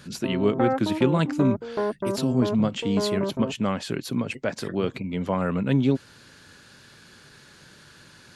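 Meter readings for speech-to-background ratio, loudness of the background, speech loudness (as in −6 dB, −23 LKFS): 3.5 dB, −29.5 LKFS, −26.0 LKFS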